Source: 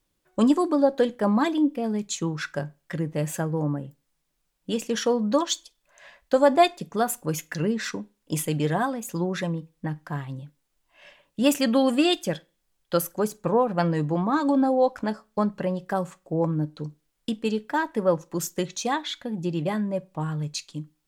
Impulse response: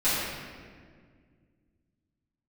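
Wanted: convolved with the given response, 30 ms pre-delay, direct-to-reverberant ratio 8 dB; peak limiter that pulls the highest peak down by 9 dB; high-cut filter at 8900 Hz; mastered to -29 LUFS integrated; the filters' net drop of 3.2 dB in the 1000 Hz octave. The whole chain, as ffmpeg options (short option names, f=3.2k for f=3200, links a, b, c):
-filter_complex "[0:a]lowpass=8.9k,equalizer=f=1k:t=o:g=-4.5,alimiter=limit=-18.5dB:level=0:latency=1,asplit=2[a][b];[1:a]atrim=start_sample=2205,adelay=30[c];[b][c]afir=irnorm=-1:irlink=0,volume=-22dB[d];[a][d]amix=inputs=2:normalize=0,volume=-0.5dB"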